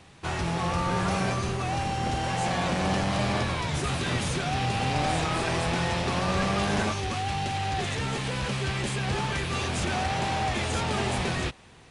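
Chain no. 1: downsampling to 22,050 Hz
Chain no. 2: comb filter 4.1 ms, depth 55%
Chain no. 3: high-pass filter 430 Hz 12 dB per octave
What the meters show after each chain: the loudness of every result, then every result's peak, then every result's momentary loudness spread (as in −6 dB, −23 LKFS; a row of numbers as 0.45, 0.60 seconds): −28.0, −27.0, −30.0 LKFS; −14.0, −13.0, −13.5 dBFS; 3, 4, 4 LU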